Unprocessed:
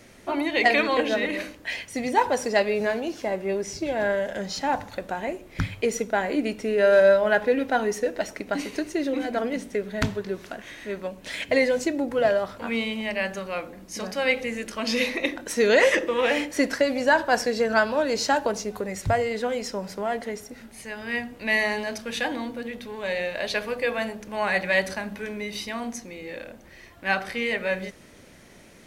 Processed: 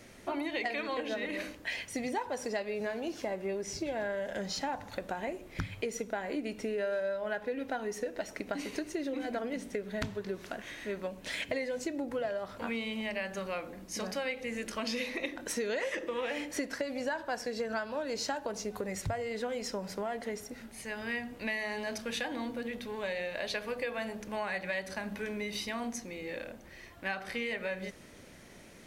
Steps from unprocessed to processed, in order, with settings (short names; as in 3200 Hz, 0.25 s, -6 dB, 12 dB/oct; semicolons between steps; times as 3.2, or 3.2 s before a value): compressor 6:1, threshold -29 dBFS, peak gain reduction 15 dB; gain -3 dB